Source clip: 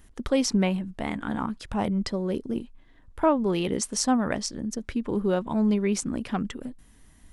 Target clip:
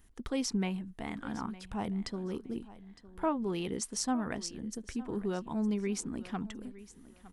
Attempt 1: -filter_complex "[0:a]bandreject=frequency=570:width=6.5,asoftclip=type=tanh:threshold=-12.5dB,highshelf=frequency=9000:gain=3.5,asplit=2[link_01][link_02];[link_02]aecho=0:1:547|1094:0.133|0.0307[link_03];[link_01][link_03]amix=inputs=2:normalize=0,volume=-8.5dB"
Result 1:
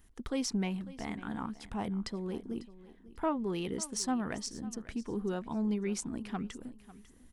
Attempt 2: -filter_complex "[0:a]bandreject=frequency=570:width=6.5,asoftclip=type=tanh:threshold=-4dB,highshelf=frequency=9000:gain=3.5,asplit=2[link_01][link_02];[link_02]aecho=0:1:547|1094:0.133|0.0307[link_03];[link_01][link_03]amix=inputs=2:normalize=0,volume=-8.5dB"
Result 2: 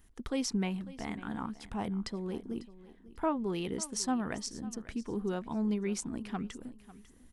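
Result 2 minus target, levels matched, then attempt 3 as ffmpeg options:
echo 363 ms early
-filter_complex "[0:a]bandreject=frequency=570:width=6.5,asoftclip=type=tanh:threshold=-4dB,highshelf=frequency=9000:gain=3.5,asplit=2[link_01][link_02];[link_02]aecho=0:1:910|1820:0.133|0.0307[link_03];[link_01][link_03]amix=inputs=2:normalize=0,volume=-8.5dB"

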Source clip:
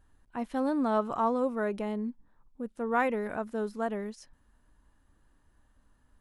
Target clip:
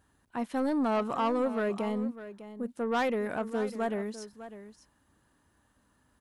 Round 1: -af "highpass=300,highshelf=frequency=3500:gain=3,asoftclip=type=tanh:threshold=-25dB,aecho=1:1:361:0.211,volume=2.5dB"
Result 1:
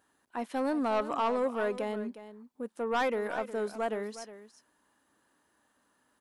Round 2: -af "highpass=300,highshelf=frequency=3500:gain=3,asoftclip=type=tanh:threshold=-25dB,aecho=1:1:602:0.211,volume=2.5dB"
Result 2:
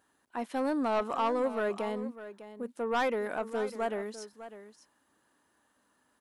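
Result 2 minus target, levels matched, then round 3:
125 Hz band −5.5 dB
-af "highpass=95,highshelf=frequency=3500:gain=3,asoftclip=type=tanh:threshold=-25dB,aecho=1:1:602:0.211,volume=2.5dB"

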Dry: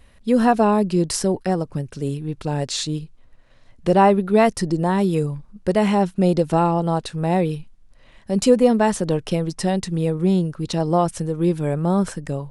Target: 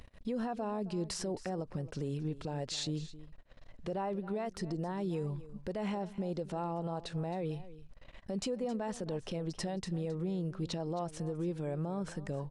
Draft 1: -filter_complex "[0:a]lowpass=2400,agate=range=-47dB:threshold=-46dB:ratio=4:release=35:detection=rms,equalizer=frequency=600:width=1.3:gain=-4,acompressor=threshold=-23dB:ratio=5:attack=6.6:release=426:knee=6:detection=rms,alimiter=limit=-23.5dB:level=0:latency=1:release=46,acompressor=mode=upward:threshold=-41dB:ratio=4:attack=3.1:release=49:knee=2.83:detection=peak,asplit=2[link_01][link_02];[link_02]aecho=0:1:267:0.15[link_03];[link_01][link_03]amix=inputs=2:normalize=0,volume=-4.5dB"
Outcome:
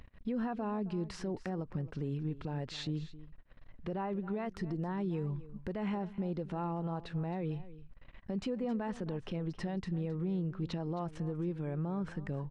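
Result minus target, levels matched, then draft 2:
8,000 Hz band −13.0 dB; 500 Hz band −2.5 dB
-filter_complex "[0:a]lowpass=7100,agate=range=-47dB:threshold=-46dB:ratio=4:release=35:detection=rms,equalizer=frequency=600:width=1.3:gain=3.5,acompressor=threshold=-23dB:ratio=5:attack=6.6:release=426:knee=6:detection=rms,alimiter=limit=-23.5dB:level=0:latency=1:release=46,acompressor=mode=upward:threshold=-41dB:ratio=4:attack=3.1:release=49:knee=2.83:detection=peak,asplit=2[link_01][link_02];[link_02]aecho=0:1:267:0.15[link_03];[link_01][link_03]amix=inputs=2:normalize=0,volume=-4.5dB"

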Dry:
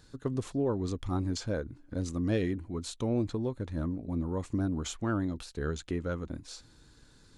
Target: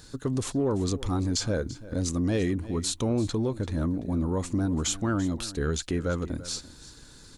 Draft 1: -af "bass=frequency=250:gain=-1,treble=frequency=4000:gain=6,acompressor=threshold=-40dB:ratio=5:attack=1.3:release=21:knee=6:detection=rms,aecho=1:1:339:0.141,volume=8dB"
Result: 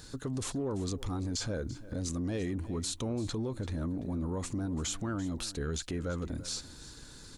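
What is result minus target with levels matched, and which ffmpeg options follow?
downward compressor: peak gain reduction +8.5 dB
-af "bass=frequency=250:gain=-1,treble=frequency=4000:gain=6,acompressor=threshold=-29.5dB:ratio=5:attack=1.3:release=21:knee=6:detection=rms,aecho=1:1:339:0.141,volume=8dB"

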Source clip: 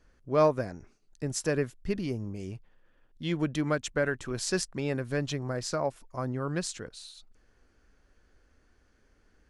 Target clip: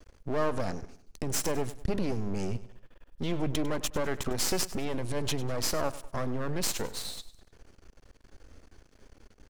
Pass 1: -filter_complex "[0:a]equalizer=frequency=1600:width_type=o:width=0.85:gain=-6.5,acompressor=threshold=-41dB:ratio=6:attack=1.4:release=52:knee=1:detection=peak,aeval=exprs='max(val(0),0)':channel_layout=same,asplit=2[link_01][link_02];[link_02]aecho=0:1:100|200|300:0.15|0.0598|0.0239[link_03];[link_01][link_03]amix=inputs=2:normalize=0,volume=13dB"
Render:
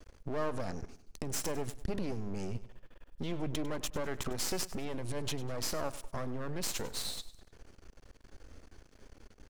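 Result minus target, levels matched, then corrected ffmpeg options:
downward compressor: peak gain reduction +6 dB
-filter_complex "[0:a]equalizer=frequency=1600:width_type=o:width=0.85:gain=-6.5,acompressor=threshold=-34dB:ratio=6:attack=1.4:release=52:knee=1:detection=peak,aeval=exprs='max(val(0),0)':channel_layout=same,asplit=2[link_01][link_02];[link_02]aecho=0:1:100|200|300:0.15|0.0598|0.0239[link_03];[link_01][link_03]amix=inputs=2:normalize=0,volume=13dB"

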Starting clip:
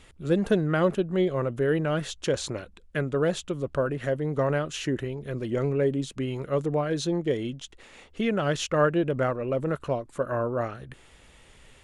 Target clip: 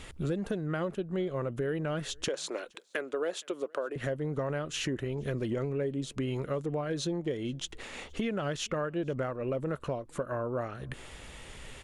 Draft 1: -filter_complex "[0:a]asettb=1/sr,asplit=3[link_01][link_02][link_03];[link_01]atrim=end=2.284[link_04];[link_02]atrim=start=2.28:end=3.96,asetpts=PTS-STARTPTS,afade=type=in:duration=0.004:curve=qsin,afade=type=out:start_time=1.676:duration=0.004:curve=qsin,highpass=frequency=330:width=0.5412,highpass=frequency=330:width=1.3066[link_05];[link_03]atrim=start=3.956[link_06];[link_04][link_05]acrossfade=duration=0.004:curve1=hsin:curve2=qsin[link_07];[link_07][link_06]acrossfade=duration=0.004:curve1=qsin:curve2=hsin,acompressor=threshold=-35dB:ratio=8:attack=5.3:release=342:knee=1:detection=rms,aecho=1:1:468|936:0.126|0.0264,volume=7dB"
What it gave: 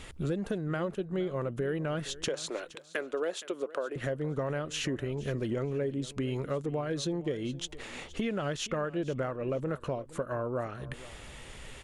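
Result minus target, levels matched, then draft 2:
echo-to-direct +11 dB
-filter_complex "[0:a]asettb=1/sr,asplit=3[link_01][link_02][link_03];[link_01]atrim=end=2.284[link_04];[link_02]atrim=start=2.28:end=3.96,asetpts=PTS-STARTPTS,afade=type=in:duration=0.004:curve=qsin,afade=type=out:start_time=1.676:duration=0.004:curve=qsin,highpass=frequency=330:width=0.5412,highpass=frequency=330:width=1.3066[link_05];[link_03]atrim=start=3.956[link_06];[link_04][link_05]acrossfade=duration=0.004:curve1=hsin:curve2=qsin[link_07];[link_07][link_06]acrossfade=duration=0.004:curve1=qsin:curve2=hsin,acompressor=threshold=-35dB:ratio=8:attack=5.3:release=342:knee=1:detection=rms,aecho=1:1:468:0.0355,volume=7dB"

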